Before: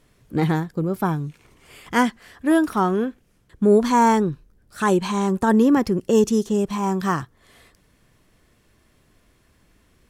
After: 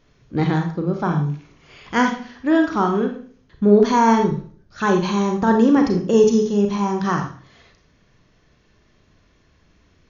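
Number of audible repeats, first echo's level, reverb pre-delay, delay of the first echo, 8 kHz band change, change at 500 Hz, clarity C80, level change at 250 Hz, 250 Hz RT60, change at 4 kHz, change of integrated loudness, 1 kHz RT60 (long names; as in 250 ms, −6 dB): no echo audible, no echo audible, 30 ms, no echo audible, −1.5 dB, +2.5 dB, 11.5 dB, +2.0 dB, 0.50 s, +2.0 dB, +2.0 dB, 0.45 s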